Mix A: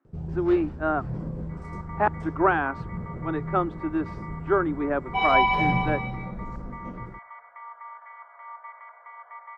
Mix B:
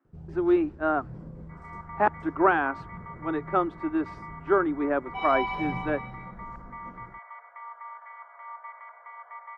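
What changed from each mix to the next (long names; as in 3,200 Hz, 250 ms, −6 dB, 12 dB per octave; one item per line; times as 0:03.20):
first sound −9.5 dB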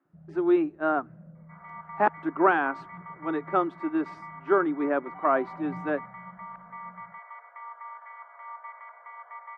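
first sound: add pair of resonant band-passes 330 Hz, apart 1.8 octaves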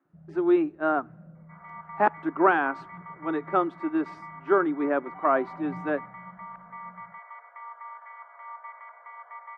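speech: send +10.0 dB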